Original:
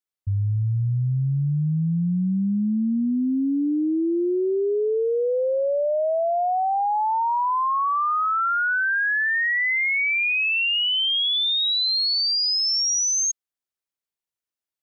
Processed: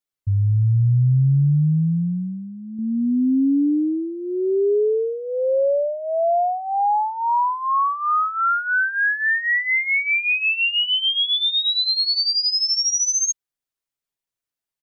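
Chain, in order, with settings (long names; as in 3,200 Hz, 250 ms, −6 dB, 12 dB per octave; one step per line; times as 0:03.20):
low-shelf EQ 94 Hz +7 dB
comb filter 7.3 ms, depth 63%
0:01.23–0:02.79: expander for the loud parts 1.5 to 1, over −26 dBFS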